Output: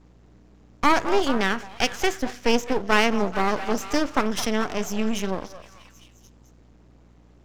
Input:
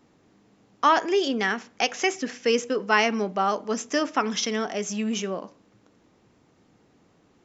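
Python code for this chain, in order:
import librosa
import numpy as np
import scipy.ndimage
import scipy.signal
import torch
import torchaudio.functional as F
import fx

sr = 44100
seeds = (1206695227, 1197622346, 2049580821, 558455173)

y = fx.low_shelf(x, sr, hz=350.0, db=6.5)
y = fx.echo_stepped(y, sr, ms=215, hz=770.0, octaves=0.7, feedback_pct=70, wet_db=-8)
y = np.maximum(y, 0.0)
y = fx.add_hum(y, sr, base_hz=60, snr_db=30)
y = y * 10.0 ** (2.5 / 20.0)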